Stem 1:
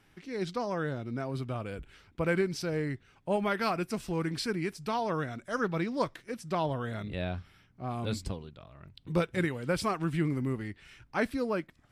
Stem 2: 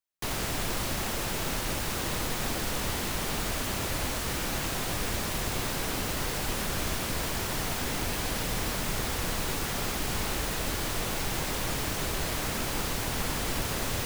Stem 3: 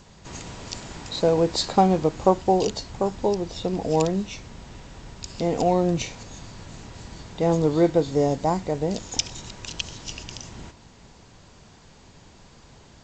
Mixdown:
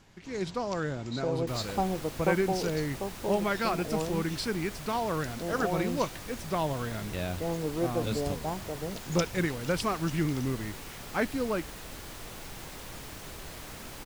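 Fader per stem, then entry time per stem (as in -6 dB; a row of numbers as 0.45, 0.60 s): +0.5, -12.0, -11.5 dB; 0.00, 1.25, 0.00 s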